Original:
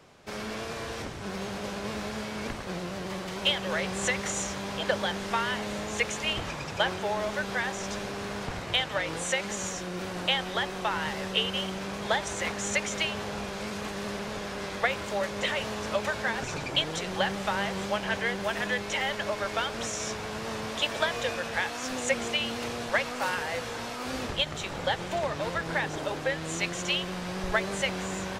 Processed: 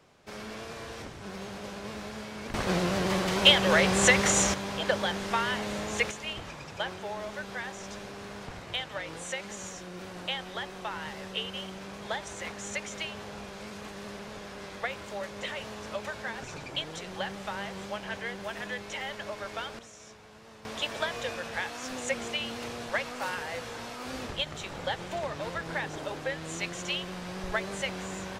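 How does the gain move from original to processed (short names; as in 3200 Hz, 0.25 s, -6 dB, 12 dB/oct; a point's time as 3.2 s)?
-5 dB
from 2.54 s +7.5 dB
from 4.54 s 0 dB
from 6.11 s -7 dB
from 19.79 s -17 dB
from 20.65 s -4 dB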